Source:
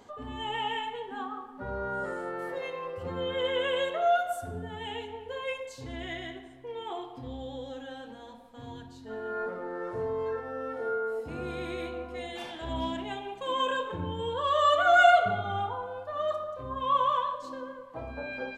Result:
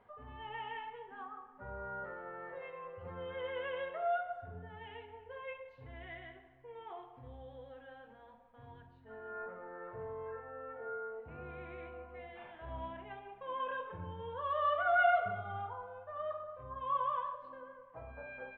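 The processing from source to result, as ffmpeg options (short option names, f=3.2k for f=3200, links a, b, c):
-filter_complex "[0:a]asettb=1/sr,asplit=3[a][b][c];[a]atrim=end=10.144[d];[b]atrim=start=10.14:end=13.72,asetpts=PTS-STARTPTS,afade=t=in:d=0.004:c=qsin,afade=t=out:st=3.576:d=0.004:c=qsin,equalizer=f=5.9k:t=o:w=0.77:g=-14[e];[c]atrim=start=13.716[f];[d][e]acrossfade=d=0.004:c1=hsin:c2=qsin[g];[g][f]acrossfade=d=0.004:c1=qsin:c2=hsin,lowpass=f=2.4k:w=0.5412,lowpass=f=2.4k:w=1.3066,equalizer=f=290:t=o:w=0.89:g=-11.5,bandreject=f=830:w=24,volume=-8dB"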